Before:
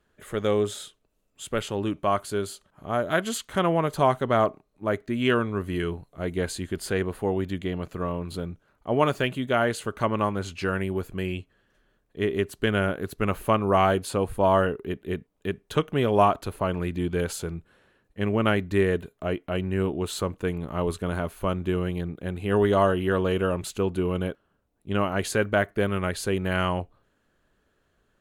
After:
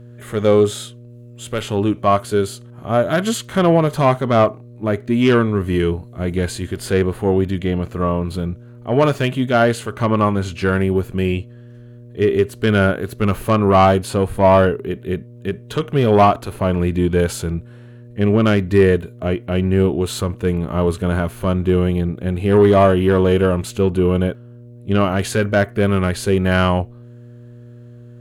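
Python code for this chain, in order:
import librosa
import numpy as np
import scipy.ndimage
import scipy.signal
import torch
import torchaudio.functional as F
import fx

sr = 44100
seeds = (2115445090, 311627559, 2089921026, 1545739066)

y = fx.cheby_harmonics(x, sr, harmonics=(5,), levels_db=(-15,), full_scale_db=-6.5)
y = fx.hpss(y, sr, part='harmonic', gain_db=8)
y = fx.dmg_buzz(y, sr, base_hz=120.0, harmonics=5, level_db=-38.0, tilt_db=-8, odd_only=False)
y = y * 10.0 ** (-1.5 / 20.0)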